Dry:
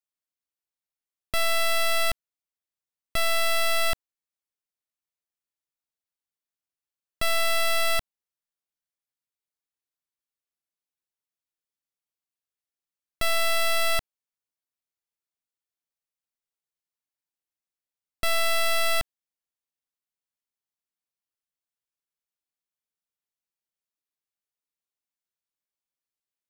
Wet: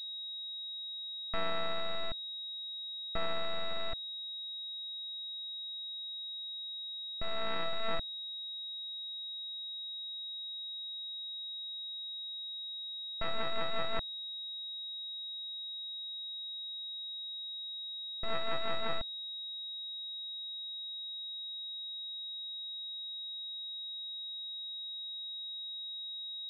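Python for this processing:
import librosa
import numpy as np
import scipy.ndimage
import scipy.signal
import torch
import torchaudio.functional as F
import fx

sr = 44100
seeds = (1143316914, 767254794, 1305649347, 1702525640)

y = fx.rotary_switch(x, sr, hz=0.6, then_hz=5.5, switch_at_s=7.28)
y = fx.pwm(y, sr, carrier_hz=3800.0)
y = y * 10.0 ** (-6.0 / 20.0)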